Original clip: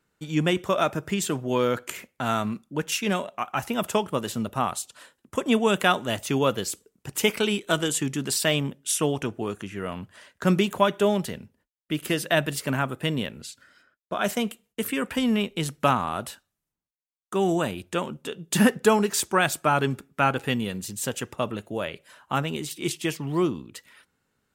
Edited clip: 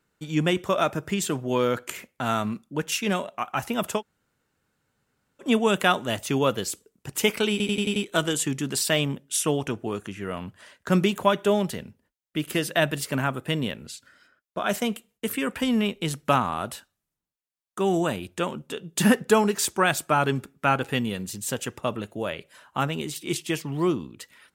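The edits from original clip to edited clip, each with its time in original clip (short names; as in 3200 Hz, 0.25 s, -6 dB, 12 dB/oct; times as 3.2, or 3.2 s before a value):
3.98–5.44 room tone, crossfade 0.10 s
7.51 stutter 0.09 s, 6 plays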